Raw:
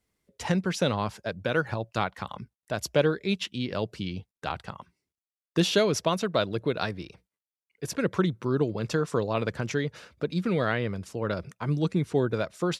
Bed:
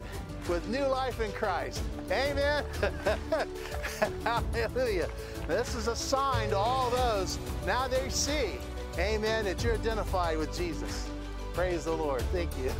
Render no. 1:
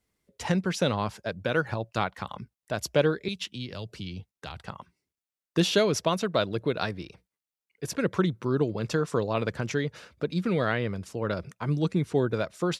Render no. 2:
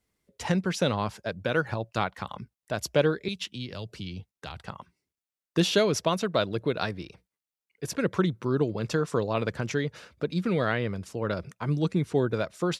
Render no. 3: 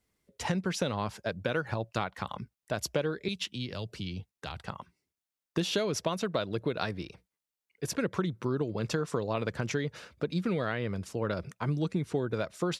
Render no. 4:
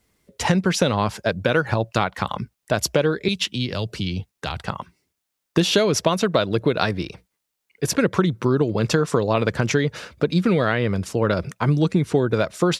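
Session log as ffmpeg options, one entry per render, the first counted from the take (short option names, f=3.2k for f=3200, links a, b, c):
-filter_complex "[0:a]asettb=1/sr,asplit=3[a][b][c];[a]atrim=end=3.284[d];[b]atrim=start=3.28:end=4.6,asetpts=PTS-STARTPTS,afade=t=in:d=0.004:c=qsin,afade=t=out:st=1.316:d=0.004:c=qsin,acrossover=split=130|3000[e][f][g];[f]acompressor=threshold=-40dB:ratio=3:attack=3.2:release=140:knee=2.83:detection=peak[h];[e][h][g]amix=inputs=3:normalize=0[i];[c]atrim=start=4.596[j];[d][i]acrossfade=d=0.004:c1=hsin:c2=qsin[k];[k][j]acrossfade=d=0.004:c1=qsin:c2=hsin"
-af anull
-af "acompressor=threshold=-26dB:ratio=6"
-af "volume=11.5dB,alimiter=limit=-3dB:level=0:latency=1"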